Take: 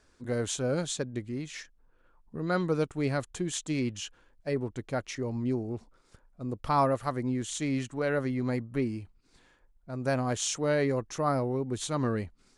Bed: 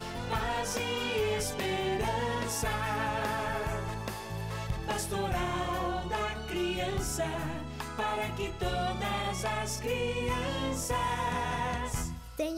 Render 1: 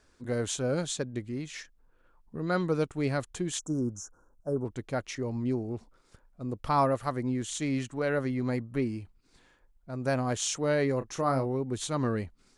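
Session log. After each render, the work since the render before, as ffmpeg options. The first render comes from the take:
-filter_complex "[0:a]asettb=1/sr,asplit=3[a][b][c];[a]atrim=end=3.594[d];[b]atrim=start=3.59:end=4.65,asetpts=PTS-STARTPTS,afade=t=in:d=0.004:c=qsin,afade=t=out:st=1.056:d=0.004:c=qsin,asuperstop=centerf=2900:order=20:qfactor=0.73[e];[c]atrim=start=4.646[f];[d][e]acrossfade=d=0.004:c1=hsin:c2=qsin[g];[g][f]acrossfade=d=0.004:c1=qsin:c2=hsin,asettb=1/sr,asplit=3[h][i][j];[h]atrim=end=10.984[k];[i]atrim=start=10.98:end=11.46,asetpts=PTS-STARTPTS,afade=t=in:d=0.004:c=qsin,afade=t=out:st=0.476:d=0.004:c=qsin,asplit=2[l][m];[m]adelay=30,volume=-10dB[n];[l][n]amix=inputs=2:normalize=0,atrim=end_sample=21168[o];[j]atrim=start=11.456[p];[k][o]acrossfade=d=0.004:c1=hsin:c2=qsin[q];[q][p]acrossfade=d=0.004:c1=qsin:c2=hsin"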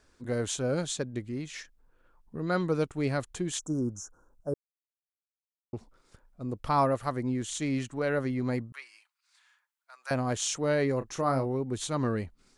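-filter_complex "[0:a]asettb=1/sr,asplit=3[a][b][c];[a]atrim=end=8.724[d];[b]atrim=start=8.72:end=10.11,asetpts=PTS-STARTPTS,afade=t=in:d=0.004:c=qsin,afade=t=out:st=1.386:d=0.004:c=qsin,highpass=f=1.1k:w=0.5412,highpass=f=1.1k:w=1.3066[e];[c]atrim=start=10.106[f];[d][e]acrossfade=d=0.004:c1=hsin:c2=qsin[g];[g][f]acrossfade=d=0.004:c1=qsin:c2=hsin,asplit=3[h][i][j];[h]atrim=end=4.54,asetpts=PTS-STARTPTS,afade=t=out:st=4.536:d=0.004:c=hsin[k];[i]atrim=start=4.54:end=5.73,asetpts=PTS-STARTPTS,volume=0[l];[j]atrim=start=5.73,asetpts=PTS-STARTPTS,afade=t=in:d=0.004:c=hsin[m];[k][l][m]concat=n=3:v=0:a=1"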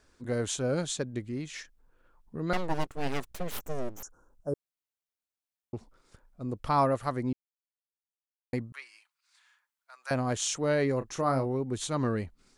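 -filter_complex "[0:a]asettb=1/sr,asplit=3[a][b][c];[a]atrim=end=2.534[d];[b]atrim=start=2.53:end=4.03,asetpts=PTS-STARTPTS,afade=t=in:d=0.004:c=qsin,afade=t=out:st=1.496:d=0.004:c=qsin,aeval=exprs='abs(val(0))':c=same[e];[c]atrim=start=4.026[f];[d][e]acrossfade=d=0.004:c1=hsin:c2=qsin[g];[g][f]acrossfade=d=0.004:c1=qsin:c2=hsin,asplit=3[h][i][j];[h]atrim=end=7.33,asetpts=PTS-STARTPTS,afade=t=out:st=7.326:d=0.004:c=hsin[k];[i]atrim=start=7.33:end=8.53,asetpts=PTS-STARTPTS,volume=0[l];[j]atrim=start=8.53,asetpts=PTS-STARTPTS,afade=t=in:d=0.004:c=hsin[m];[k][l][m]concat=n=3:v=0:a=1"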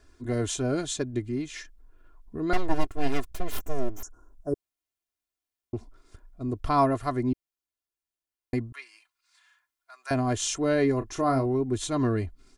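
-af "lowshelf=f=270:g=7,aecho=1:1:2.9:0.67"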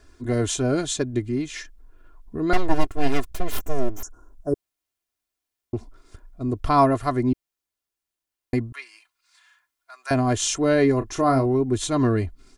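-af "volume=5dB"

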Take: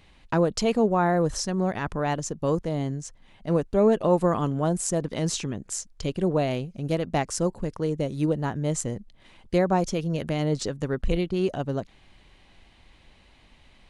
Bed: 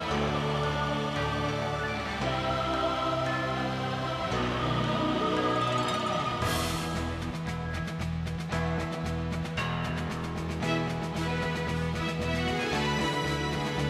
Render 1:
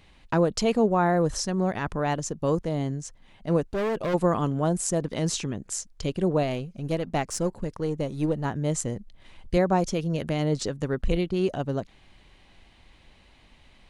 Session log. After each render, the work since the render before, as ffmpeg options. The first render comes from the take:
-filter_complex "[0:a]asplit=3[a][b][c];[a]afade=t=out:st=3.61:d=0.02[d];[b]asoftclip=type=hard:threshold=-24.5dB,afade=t=in:st=3.61:d=0.02,afade=t=out:st=4.13:d=0.02[e];[c]afade=t=in:st=4.13:d=0.02[f];[d][e][f]amix=inputs=3:normalize=0,asettb=1/sr,asplit=3[g][h][i];[g]atrim=end=6.434[j];[h]atrim=start=6.43:end=8.45,asetpts=PTS-STARTPTS,afade=t=in:d=0.004:c=qsin,afade=t=out:st=2.016:d=0.004:c=qsin,aeval=exprs='if(lt(val(0),0),0.708*val(0),val(0))':c=same[k];[i]atrim=start=8.446[l];[j][k]acrossfade=d=0.004:c1=hsin:c2=qsin[m];[m][l]acrossfade=d=0.004:c1=qsin:c2=hsin,asettb=1/sr,asplit=3[n][o][p];[n]atrim=end=8.954[q];[o]atrim=start=8.95:end=9.57,asetpts=PTS-STARTPTS,afade=t=in:d=0.004:c=qsin,afade=t=out:st=0.616:d=0.004:c=qsin,asubboost=boost=11.5:cutoff=120[r];[p]atrim=start=9.566[s];[q][r]acrossfade=d=0.004:c1=hsin:c2=qsin[t];[t][s]acrossfade=d=0.004:c1=qsin:c2=hsin"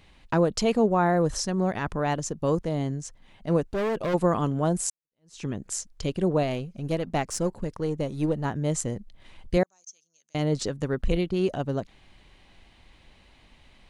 -filter_complex "[0:a]asettb=1/sr,asplit=3[a][b][c];[a]atrim=end=9.634[d];[b]atrim=start=9.63:end=10.35,asetpts=PTS-STARTPTS,afade=t=in:d=0.004:c=qsin,afade=t=out:st=0.716:d=0.004:c=qsin,bandpass=f=6.3k:t=q:w=16[e];[c]atrim=start=10.346[f];[d][e]acrossfade=d=0.004:c1=hsin:c2=qsin[g];[g][f]acrossfade=d=0.004:c1=qsin:c2=hsin,asplit=2[h][i];[h]atrim=end=4.9,asetpts=PTS-STARTPTS,afade=t=out:st=4.896:d=0.004:c=hsin[j];[i]atrim=start=4.9,asetpts=PTS-STARTPTS,afade=t=in:d=0.55:c=exp[k];[j][k]concat=n=2:v=0:a=1"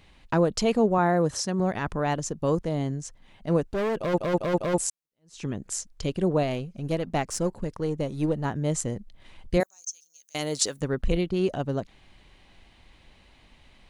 -filter_complex "[0:a]asettb=1/sr,asplit=3[a][b][c];[a]atrim=end=0.984[d];[b]atrim=start=0.98:end=1.6,asetpts=PTS-STARTPTS,afade=t=in:d=0.004:c=qsin,afade=t=out:st=0.616:d=0.004:c=qsin,highpass=100[e];[c]atrim=start=1.596[f];[d][e]acrossfade=d=0.004:c1=hsin:c2=qsin[g];[g][f]acrossfade=d=0.004:c1=qsin:c2=hsin,asettb=1/sr,asplit=3[h][i][j];[h]atrim=end=9.604[k];[i]atrim=start=9.6:end=10.81,asetpts=PTS-STARTPTS,afade=t=in:d=0.004:c=qsin,afade=t=out:st=1.206:d=0.004:c=qsin,aemphasis=mode=production:type=riaa[l];[j]atrim=start=10.806[m];[k][l]acrossfade=d=0.004:c1=hsin:c2=qsin[n];[n][m]acrossfade=d=0.004:c1=qsin:c2=hsin,asplit=5[o][p][q][r][s];[o]atrim=end=4.182[t];[p]atrim=start=3.978:end=4.182[u];[q]atrim=start=3.978:end=4.182[v];[r]atrim=start=3.978:end=4.182[w];[s]atrim=start=4.778[x];[t][u]acrossfade=d=0.004:c1=hsin:c2=hsin[y];[y][v]acrossfade=d=0.004:c1=hsin:c2=hsin[z];[z][w]acrossfade=d=0.004:c1=hsin:c2=hsin[aa];[aa][x]acrossfade=d=0.004:c1=hsin:c2=hsin"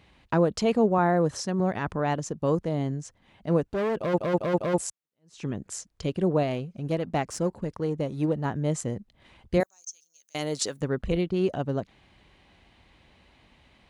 -af "highpass=58,highshelf=f=4k:g=-6.5"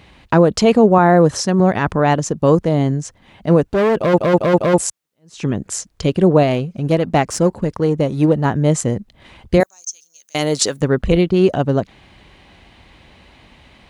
-af "volume=12dB,alimiter=limit=-2dB:level=0:latency=1"

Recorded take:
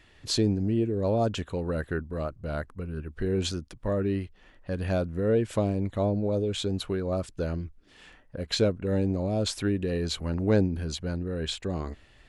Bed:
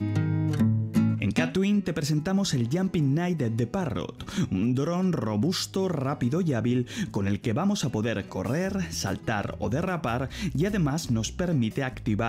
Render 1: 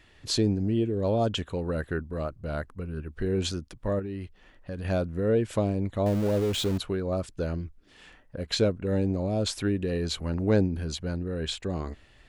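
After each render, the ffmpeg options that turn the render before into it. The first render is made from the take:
-filter_complex "[0:a]asettb=1/sr,asplit=3[a][b][c];[a]atrim=end=0.744[d];[b]atrim=start=0.74:end=1.37,asetpts=PTS-STARTPTS,afade=t=in:d=0.004:c=qsin,afade=t=out:st=0.626:d=0.004:c=qsin,equalizer=f=3.2k:t=o:w=0.21:g=10[e];[c]atrim=start=1.366[f];[d][e]acrossfade=d=0.004:c1=hsin:c2=qsin[g];[g][f]acrossfade=d=0.004:c1=qsin:c2=hsin,asettb=1/sr,asplit=3[h][i][j];[h]atrim=end=3.994[k];[i]atrim=start=3.99:end=4.85,asetpts=PTS-STARTPTS,afade=t=in:d=0.004:c=qsin,afade=t=out:st=0.856:d=0.004:c=qsin,acompressor=threshold=-31dB:ratio=6:attack=3.2:release=140:knee=1:detection=peak[l];[j]atrim=start=4.846[m];[k][l]acrossfade=d=0.004:c1=hsin:c2=qsin[n];[n][m]acrossfade=d=0.004:c1=qsin:c2=hsin,asettb=1/sr,asplit=3[o][p][q];[o]atrim=end=6.064[r];[p]atrim=start=6.06:end=6.78,asetpts=PTS-STARTPTS,afade=t=in:d=0.004:c=qsin,afade=t=out:st=0.716:d=0.004:c=qsin,aeval=exprs='val(0)+0.5*0.0251*sgn(val(0))':c=same[s];[q]atrim=start=6.776[t];[r][s]acrossfade=d=0.004:c1=hsin:c2=qsin[u];[u][t]acrossfade=d=0.004:c1=qsin:c2=hsin"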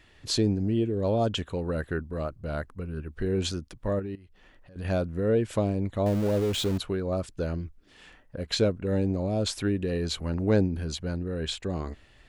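-filter_complex "[0:a]asettb=1/sr,asplit=3[a][b][c];[a]atrim=end=4.154[d];[b]atrim=start=4.15:end=4.76,asetpts=PTS-STARTPTS,afade=t=in:d=0.004:c=qsin,afade=t=out:st=0.606:d=0.004:c=qsin,acompressor=threshold=-50dB:ratio=6:attack=3.2:release=140:knee=1:detection=peak[e];[c]atrim=start=4.756[f];[d][e]acrossfade=d=0.004:c1=hsin:c2=qsin[g];[g][f]acrossfade=d=0.004:c1=qsin:c2=hsin"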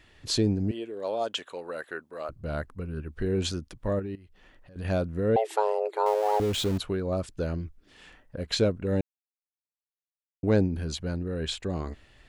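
-filter_complex "[0:a]asettb=1/sr,asplit=3[a][b][c];[a]atrim=end=0.714[d];[b]atrim=start=0.71:end=2.29,asetpts=PTS-STARTPTS,afade=t=in:d=0.004:c=qsin,afade=t=out:st=1.576:d=0.004:c=qsin,highpass=560[e];[c]atrim=start=2.286[f];[d][e]acrossfade=d=0.004:c1=hsin:c2=qsin[g];[g][f]acrossfade=d=0.004:c1=qsin:c2=hsin,asettb=1/sr,asplit=3[h][i][j];[h]atrim=end=5.364[k];[i]atrim=start=5.36:end=6.4,asetpts=PTS-STARTPTS,afade=t=in:d=0.004:c=qsin,afade=t=out:st=1.036:d=0.004:c=qsin,afreqshift=320[l];[j]atrim=start=6.396[m];[k][l]acrossfade=d=0.004:c1=hsin:c2=qsin[n];[n][m]acrossfade=d=0.004:c1=qsin:c2=hsin,asplit=3[o][p][q];[o]atrim=end=9.01,asetpts=PTS-STARTPTS,afade=t=out:st=9.006:d=0.004:c=hsin[r];[p]atrim=start=9.01:end=10.43,asetpts=PTS-STARTPTS,volume=0[s];[q]atrim=start=10.43,asetpts=PTS-STARTPTS,afade=t=in:d=0.004:c=hsin[t];[r][s][t]concat=n=3:v=0:a=1"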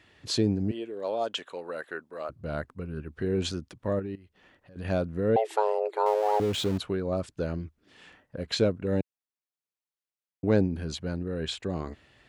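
-af "highpass=91,highshelf=f=6.4k:g=-5.5"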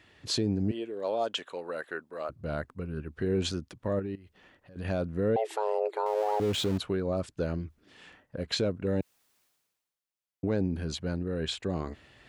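-af "alimiter=limit=-19dB:level=0:latency=1:release=76,areverse,acompressor=mode=upward:threshold=-51dB:ratio=2.5,areverse"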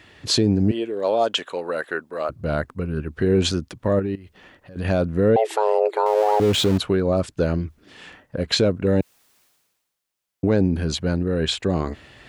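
-af "volume=10dB"

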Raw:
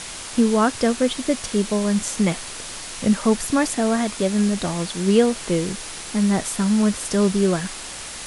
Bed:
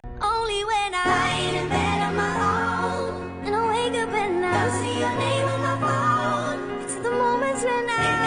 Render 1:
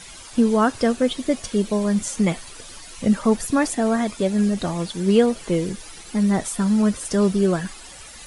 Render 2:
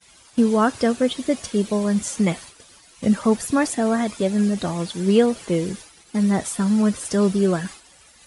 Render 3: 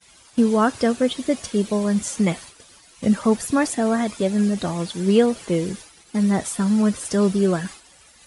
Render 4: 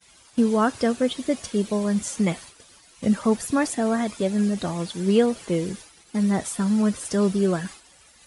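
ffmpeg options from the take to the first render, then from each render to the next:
-af "afftdn=nr=12:nf=-34"
-af "highpass=56,agate=range=-33dB:threshold=-33dB:ratio=3:detection=peak"
-af anull
-af "volume=-2.5dB"

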